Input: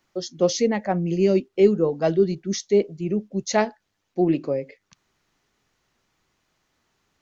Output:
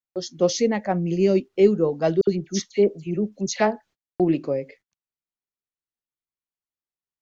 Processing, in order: 2.21–4.20 s: phase dispersion lows, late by 64 ms, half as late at 2.3 kHz; gate -49 dBFS, range -33 dB

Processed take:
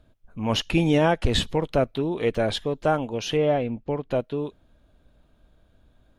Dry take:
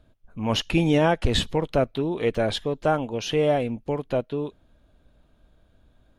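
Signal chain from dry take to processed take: 3.37–4.11 s: distance through air 160 m

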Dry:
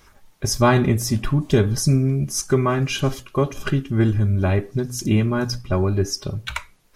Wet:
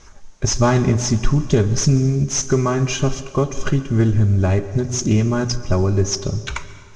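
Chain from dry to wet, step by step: CVSD coder 64 kbps; bass shelf 330 Hz -9.5 dB; in parallel at +2.5 dB: compression, threshold -28 dBFS, peak gain reduction 13.5 dB; on the sum: resonant low-pass 6.4 kHz, resonance Q 5.8; tilt EQ -3 dB/octave; plate-style reverb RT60 1.8 s, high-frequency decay 0.8×, pre-delay 110 ms, DRR 14 dB; loudspeaker Doppler distortion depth 0.11 ms; trim -2.5 dB

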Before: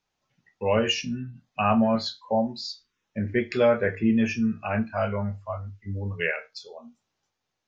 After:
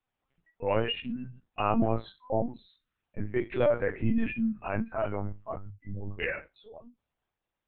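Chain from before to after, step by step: distance through air 170 m; LPC vocoder at 8 kHz pitch kept; trim -4 dB

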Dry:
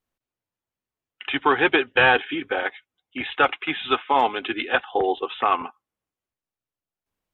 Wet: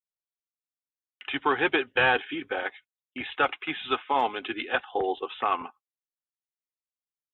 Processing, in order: gate -44 dBFS, range -27 dB; trim -5.5 dB

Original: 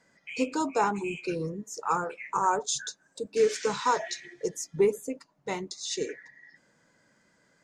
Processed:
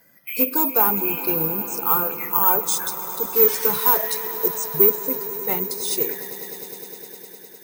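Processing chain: coarse spectral quantiser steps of 15 dB; in parallel at -4 dB: saturation -26 dBFS, distortion -9 dB; on the sum: echo with a slow build-up 102 ms, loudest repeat 5, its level -18 dB; careless resampling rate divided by 3×, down filtered, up zero stuff; trim +1 dB

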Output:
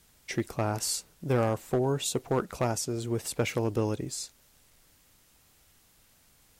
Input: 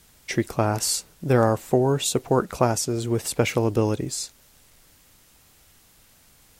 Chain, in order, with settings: hard clipper -12.5 dBFS, distortion -17 dB; trim -6.5 dB

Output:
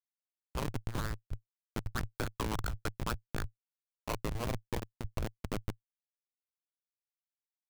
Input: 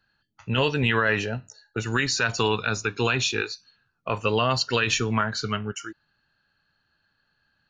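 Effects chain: band-stop 2.8 kHz, Q 13; compression 12:1, threshold -24 dBFS, peak gain reduction 8 dB; band-pass sweep 1.1 kHz -> 460 Hz, 3.14–6.75 s; Schmitt trigger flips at -33 dBFS; AM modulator 110 Hz, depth 90%; trim +12.5 dB

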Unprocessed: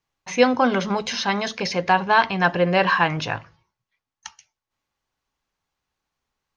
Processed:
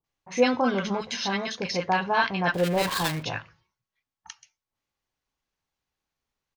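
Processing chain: 2.50–3.19 s: dead-time distortion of 0.21 ms; bands offset in time lows, highs 40 ms, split 1.1 kHz; trim -4 dB

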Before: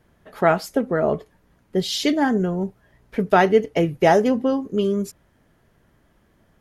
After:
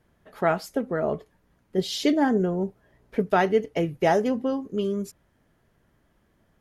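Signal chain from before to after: 1.78–3.22 s: peaking EQ 430 Hz +5.5 dB 1.9 oct; trim -5.5 dB

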